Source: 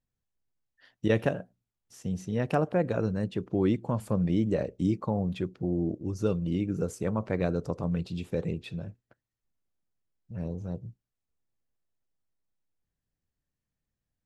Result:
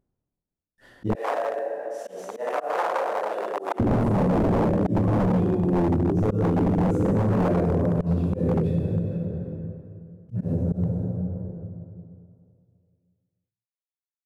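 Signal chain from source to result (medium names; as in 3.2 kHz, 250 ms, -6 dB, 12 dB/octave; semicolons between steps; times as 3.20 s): CVSD coder 64 kbps; plate-style reverb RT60 2.3 s, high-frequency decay 0.6×, DRR -7.5 dB; slow attack 126 ms; tilt shelf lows +9.5 dB; wavefolder -10.5 dBFS; dynamic bell 3.5 kHz, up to -4 dB, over -44 dBFS, Q 0.89; 1.15–3.80 s: high-pass 570 Hz 24 dB/octave; compression 2:1, threshold -33 dBFS, peak gain reduction 10.5 dB; trim +5 dB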